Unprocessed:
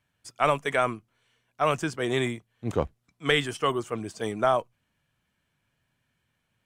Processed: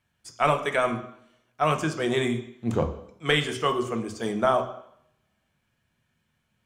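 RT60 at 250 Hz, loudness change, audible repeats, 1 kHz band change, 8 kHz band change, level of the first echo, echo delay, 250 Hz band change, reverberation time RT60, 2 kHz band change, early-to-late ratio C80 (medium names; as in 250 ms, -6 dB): 0.75 s, +1.5 dB, no echo, +1.0 dB, +1.0 dB, no echo, no echo, +3.5 dB, 0.70 s, +1.0 dB, 14.5 dB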